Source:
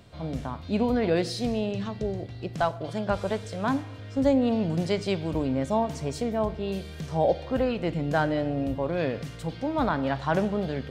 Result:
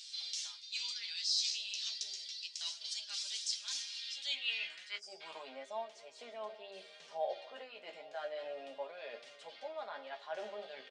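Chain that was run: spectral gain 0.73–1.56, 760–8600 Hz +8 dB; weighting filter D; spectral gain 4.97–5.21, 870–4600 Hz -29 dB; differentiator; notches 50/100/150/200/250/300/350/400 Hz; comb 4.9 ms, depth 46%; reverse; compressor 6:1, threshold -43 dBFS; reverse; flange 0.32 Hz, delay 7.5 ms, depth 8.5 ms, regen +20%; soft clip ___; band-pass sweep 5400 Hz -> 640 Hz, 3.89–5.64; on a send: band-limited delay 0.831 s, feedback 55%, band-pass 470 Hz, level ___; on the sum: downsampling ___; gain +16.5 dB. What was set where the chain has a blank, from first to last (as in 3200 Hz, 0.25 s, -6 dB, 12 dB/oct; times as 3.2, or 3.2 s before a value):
-33 dBFS, -19 dB, 22050 Hz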